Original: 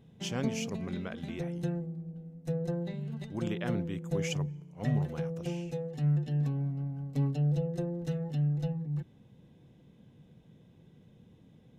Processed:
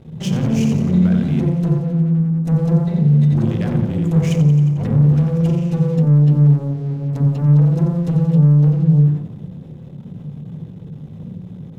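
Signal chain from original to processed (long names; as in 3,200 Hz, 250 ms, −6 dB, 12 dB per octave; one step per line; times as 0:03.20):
low-shelf EQ 200 Hz +11 dB
asymmetric clip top −31 dBFS, bottom −15 dBFS
feedback echo with a high-pass in the loop 89 ms, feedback 51%, high-pass 230 Hz, level −6 dB
leveller curve on the samples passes 3
downward compressor, threshold −23 dBFS, peak gain reduction 6.5 dB
on a send at −10 dB: parametric band 300 Hz +5.5 dB 1.9 octaves + convolution reverb RT60 0.30 s, pre-delay 47 ms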